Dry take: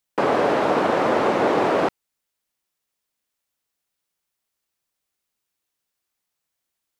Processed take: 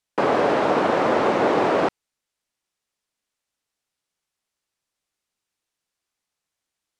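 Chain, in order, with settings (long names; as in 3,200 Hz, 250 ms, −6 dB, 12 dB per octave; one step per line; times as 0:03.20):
low-pass filter 9,400 Hz 12 dB per octave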